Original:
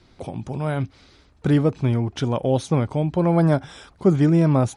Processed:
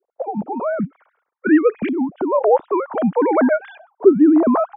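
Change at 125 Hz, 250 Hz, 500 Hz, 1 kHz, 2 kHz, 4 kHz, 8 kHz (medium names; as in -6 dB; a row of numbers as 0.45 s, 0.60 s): -16.0 dB, +4.5 dB, +6.5 dB, +7.5 dB, +8.0 dB, under -10 dB, under -40 dB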